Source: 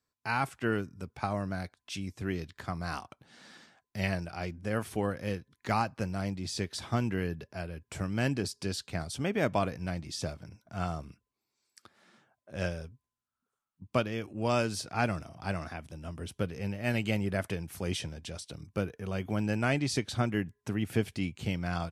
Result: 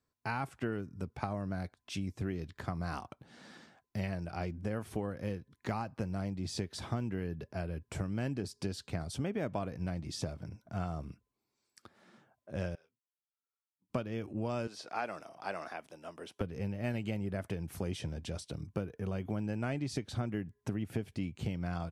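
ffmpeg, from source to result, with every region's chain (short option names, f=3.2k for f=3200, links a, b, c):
-filter_complex "[0:a]asettb=1/sr,asplit=3[a][b][c];[a]atrim=end=12.754[d];[b]atrim=start=12.75:end=13.9,asetpts=PTS-STARTPTS,afade=t=in:d=0.004:c=qsin,afade=t=out:st=1.146:d=0.004:c=qsin,highpass=180,lowpass=2.5k,aderivative,asplit=2[e][f];[f]adelay=27,volume=-9dB[g];[e][g]amix=inputs=2:normalize=0,atrim=end_sample=50715[h];[c]atrim=start=13.896[i];[d][h]acrossfade=d=0.004:c1=hsin:c2=qsin[j];[j][i]acrossfade=d=0.004:c1=qsin:c2=hsin,asettb=1/sr,asplit=3[k][l][m];[k]atrim=end=14.674[n];[l]atrim=start=14.67:end=16.41,asetpts=PTS-STARTPTS,afade=t=in:d=0.004:c=qsin,afade=t=out:st=1.736:d=0.004:c=qsin,highpass=490,acrossover=split=5600[o][p];[p]acompressor=threshold=-55dB:ratio=4:attack=1:release=60[q];[o][q]amix=inputs=2:normalize=0[r];[m]atrim=start=16.406[s];[n][r]acrossfade=d=0.004:c1=hsin:c2=qsin[t];[t][s]acrossfade=d=0.004:c1=qsin:c2=hsin,tiltshelf=f=1.1k:g=4,acompressor=threshold=-32dB:ratio=6"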